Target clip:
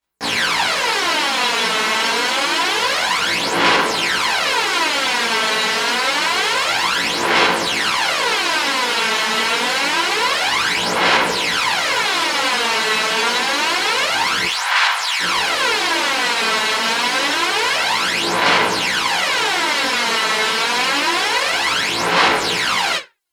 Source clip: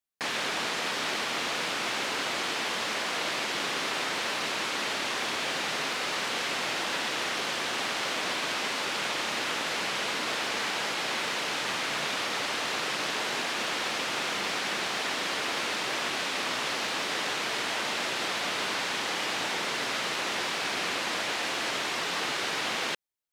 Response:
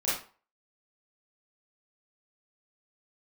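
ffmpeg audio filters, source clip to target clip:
-filter_complex "[0:a]asettb=1/sr,asplit=3[a][b][c];[a]atrim=end=14.434[d];[b]atrim=start=14.43:end=15.2,asetpts=PTS-STARTPTS,afade=t=in:d=0.004:c=qsin,afade=t=out:st=0.766:d=0.004:c=qsin,highpass=f=870:w=0.5412,highpass=f=870:w=1.3066[e];[c]atrim=start=15.196[f];[d][e]acrossfade=d=0.004:c1=hsin:c2=qsin[g];[g][f]acrossfade=d=0.004:c1=qsin:c2=hsin[h];[1:a]atrim=start_sample=2205,asetrate=79380,aresample=44100[i];[h][i]afir=irnorm=-1:irlink=0,aphaser=in_gain=1:out_gain=1:delay=4.6:decay=0.63:speed=0.27:type=sinusoidal,volume=7.5dB"

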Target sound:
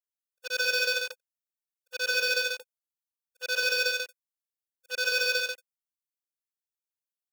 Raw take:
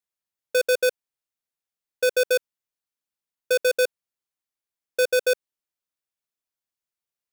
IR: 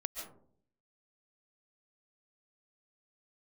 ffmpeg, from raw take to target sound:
-af "afftfilt=real='re':imag='-im':win_size=8192:overlap=0.75,highpass=1k,afwtdn=0.00891,asuperstop=centerf=2200:order=12:qfactor=5,highshelf=f=5k:g=12,aecho=1:1:81.63|139.9:0.631|0.794,volume=1.5dB"

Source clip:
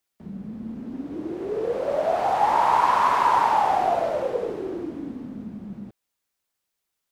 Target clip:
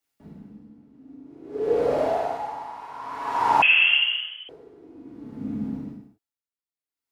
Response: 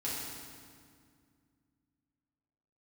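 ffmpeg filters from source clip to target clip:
-filter_complex "[0:a]asettb=1/sr,asplit=3[a][b][c];[a]atrim=end=1.144[d];[b]atrim=start=1.14:end=1.61,asetpts=PTS-STARTPTS,afade=t=in:d=0.004:c=qsin,afade=t=out:st=0.466:d=0.004:c=qsin,agate=range=-33dB:threshold=-24dB:ratio=3:detection=peak[e];[c]atrim=start=1.606[f];[d][e]acrossfade=d=0.004:c1=hsin:c2=qsin[g];[g][f]acrossfade=d=0.004:c1=qsin:c2=hsin[h];[1:a]atrim=start_sample=2205,afade=t=out:st=0.32:d=0.01,atrim=end_sample=14553[i];[h][i]afir=irnorm=-1:irlink=0,asettb=1/sr,asplit=3[j][k][l];[j]atrim=end=3.624[m];[k]atrim=start=3.62:end=4.49,asetpts=PTS-STARTPTS,afade=t=in:d=0.004:c=qsin,afade=t=out:st=0.866:d=0.004:c=qsin,lowpass=f=3k:t=q:w=0.5098,lowpass=f=3k:t=q:w=0.6013,lowpass=f=3k:t=q:w=0.9,lowpass=f=3k:t=q:w=2.563,afreqshift=-3500[n];[l]atrim=start=4.486[o];[m][n]acrossfade=d=0.004:c1=hsin:c2=qsin[p];[p][o]acrossfade=d=0.004:c1=qsin:c2=hsin,aeval=exprs='val(0)*pow(10,-23*(0.5-0.5*cos(2*PI*0.53*n/s))/20)':c=same"

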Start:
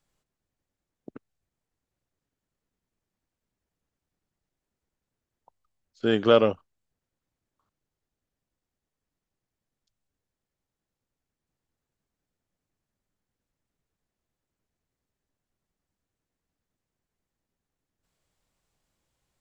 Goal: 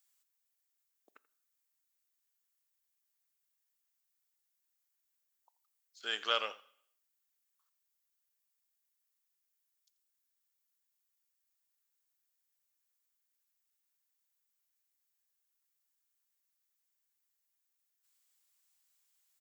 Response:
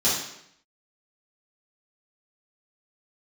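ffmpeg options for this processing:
-filter_complex "[0:a]highpass=1.4k,aemphasis=mode=production:type=50fm,aecho=1:1:84:0.112,asplit=2[a][b];[1:a]atrim=start_sample=2205,lowshelf=f=300:g=-10[c];[b][c]afir=irnorm=-1:irlink=0,volume=-31.5dB[d];[a][d]amix=inputs=2:normalize=0,volume=-4dB"

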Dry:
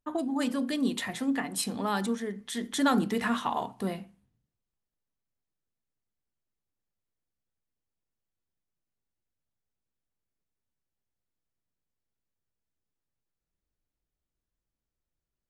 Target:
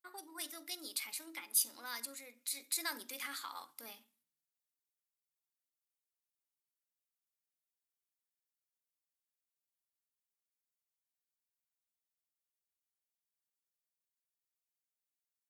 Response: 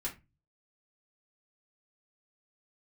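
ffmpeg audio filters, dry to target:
-filter_complex "[0:a]asetrate=52444,aresample=44100,atempo=0.840896,aderivative,asplit=2[a][b];[1:a]atrim=start_sample=2205,adelay=44[c];[b][c]afir=irnorm=-1:irlink=0,volume=-22.5dB[d];[a][d]amix=inputs=2:normalize=0"

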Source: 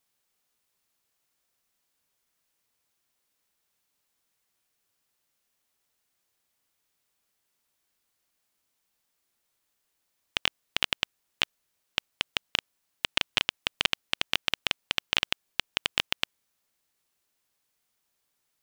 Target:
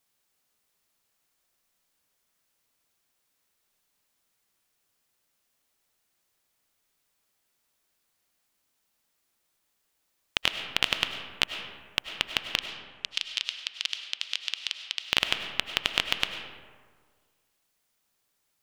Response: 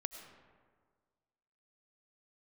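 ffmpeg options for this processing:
-filter_complex "[0:a]asettb=1/sr,asplit=3[a][b][c];[a]atrim=end=12.564[d];[b]atrim=start=12.56:end=15.03,asetpts=PTS-STARTPTS,afade=t=in:d=0.004:c=qsin,afade=t=out:st=2.466:d=0.004:c=qsin,bandpass=f=5k:t=q:w=1.5:csg=0[e];[c]atrim=start=15.026[f];[d][e]acrossfade=d=0.004:c1=hsin:c2=qsin[g];[g][f]acrossfade=d=0.004:c1=qsin:c2=hsin[h];[1:a]atrim=start_sample=2205[i];[h][i]afir=irnorm=-1:irlink=0,volume=4dB"

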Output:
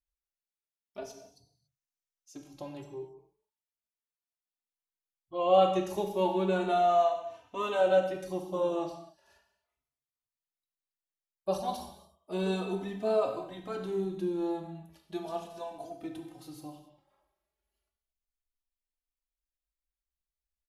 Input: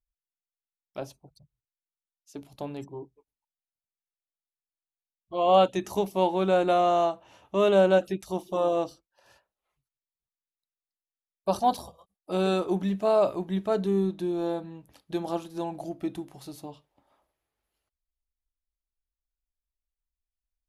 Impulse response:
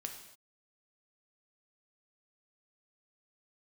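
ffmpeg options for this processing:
-filter_complex "[0:a]asettb=1/sr,asplit=3[a][b][c];[a]atrim=end=1.014[d];[b]atrim=start=1.01:end=2.74,asetpts=PTS-STARTPTS,afade=t=in:d=0.004:c=qsin,afade=t=out:st=1.726:d=0.004:c=qsin,equalizer=f=6k:t=o:w=0.55:g=8.5[e];[c]atrim=start=2.736[f];[d][e]acrossfade=d=0.004:c1=hsin:c2=qsin[g];[g][f]acrossfade=d=0.004:c1=qsin:c2=hsin[h];[1:a]atrim=start_sample=2205[i];[h][i]afir=irnorm=-1:irlink=0,asplit=2[j][k];[k]adelay=3.2,afreqshift=0.35[l];[j][l]amix=inputs=2:normalize=1"

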